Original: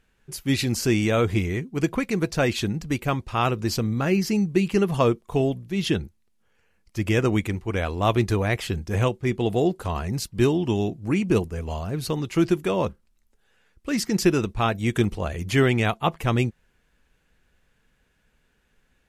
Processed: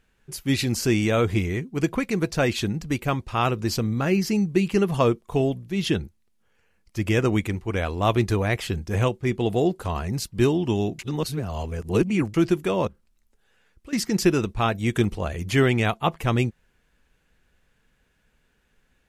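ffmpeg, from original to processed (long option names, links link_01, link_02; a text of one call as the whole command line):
ffmpeg -i in.wav -filter_complex "[0:a]asettb=1/sr,asplit=3[link_01][link_02][link_03];[link_01]atrim=end=12.874[link_04];[link_02]atrim=start=12.87:end=13.93,asetpts=PTS-STARTPTS,afade=type=in:duration=0.004:curve=qsin,afade=type=out:start_time=1.056:duration=0.004:curve=qsin,acompressor=threshold=-44dB:ratio=2.5:attack=3.2:release=140:knee=1:detection=peak[link_05];[link_03]atrim=start=13.926[link_06];[link_04][link_05]acrossfade=duration=0.004:curve1=hsin:curve2=qsin[link_07];[link_07][link_06]acrossfade=duration=0.004:curve1=qsin:curve2=hsin,asplit=3[link_08][link_09][link_10];[link_08]atrim=end=10.992[link_11];[link_09]atrim=start=10.988:end=12.342,asetpts=PTS-STARTPTS,areverse[link_12];[link_10]atrim=start=12.338[link_13];[link_11][link_12]acrossfade=duration=0.004:curve1=hsin:curve2=hsin[link_14];[link_14][link_13]acrossfade=duration=0.004:curve1=hsin:curve2=hsin" out.wav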